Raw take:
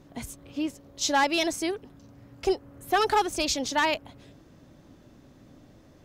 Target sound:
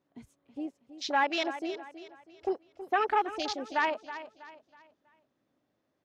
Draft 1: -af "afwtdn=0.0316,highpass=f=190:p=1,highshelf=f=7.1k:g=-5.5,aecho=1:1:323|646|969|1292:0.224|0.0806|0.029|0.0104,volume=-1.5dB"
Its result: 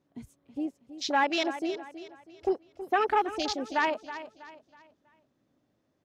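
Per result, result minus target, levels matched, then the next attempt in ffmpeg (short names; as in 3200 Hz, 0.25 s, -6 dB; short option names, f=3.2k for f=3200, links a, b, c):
8000 Hz band +2.5 dB; 250 Hz band +2.5 dB
-af "afwtdn=0.0316,highpass=f=190:p=1,highshelf=f=7.1k:g=-16,aecho=1:1:323|646|969|1292:0.224|0.0806|0.029|0.0104,volume=-1.5dB"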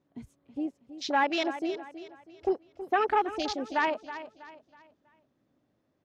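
250 Hz band +2.5 dB
-af "afwtdn=0.0316,highpass=f=520:p=1,highshelf=f=7.1k:g=-16,aecho=1:1:323|646|969|1292:0.224|0.0806|0.029|0.0104,volume=-1.5dB"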